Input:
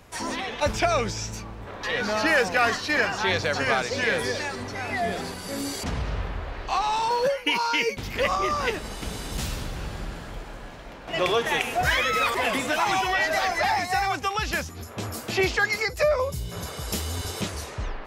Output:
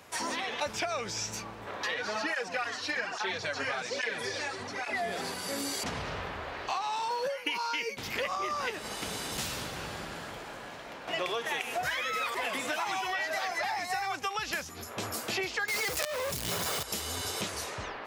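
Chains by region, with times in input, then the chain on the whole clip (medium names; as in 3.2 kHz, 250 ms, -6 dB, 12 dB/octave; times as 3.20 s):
1.94–4.95 s: low-pass 9.6 kHz + cancelling through-zero flanger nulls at 1.2 Hz, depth 6.1 ms
15.68–16.83 s: companded quantiser 2-bit + level flattener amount 50%
whole clip: high-pass 91 Hz 12 dB/octave; bass shelf 310 Hz -9.5 dB; compression 6:1, threshold -31 dBFS; trim +1 dB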